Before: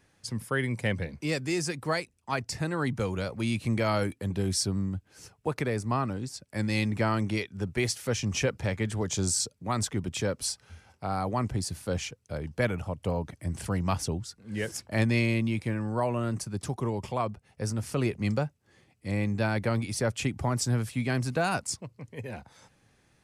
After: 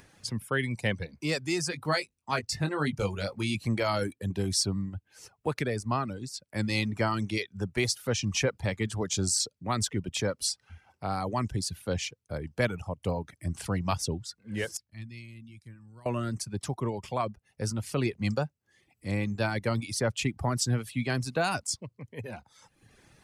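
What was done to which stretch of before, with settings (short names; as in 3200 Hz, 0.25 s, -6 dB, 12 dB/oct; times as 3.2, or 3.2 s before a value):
1.7–3.55 doubler 20 ms -6.5 dB
14.77–16.06 passive tone stack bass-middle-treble 6-0-2
whole clip: reverb removal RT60 0.82 s; dynamic EQ 4000 Hz, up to +4 dB, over -49 dBFS, Q 1.2; upward compressor, threshold -49 dBFS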